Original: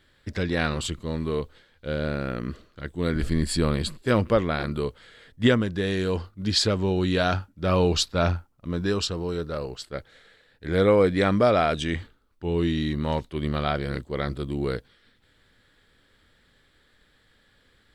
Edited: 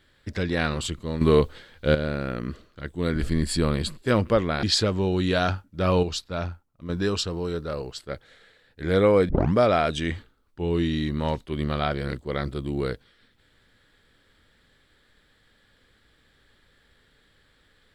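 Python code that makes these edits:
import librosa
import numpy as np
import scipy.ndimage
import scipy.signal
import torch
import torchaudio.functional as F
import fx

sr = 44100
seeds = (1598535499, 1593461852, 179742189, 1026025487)

y = fx.edit(x, sr, fx.clip_gain(start_s=1.21, length_s=0.74, db=9.5),
    fx.cut(start_s=4.63, length_s=1.84),
    fx.clip_gain(start_s=7.87, length_s=0.86, db=-7.0),
    fx.tape_start(start_s=11.13, length_s=0.25), tone=tone)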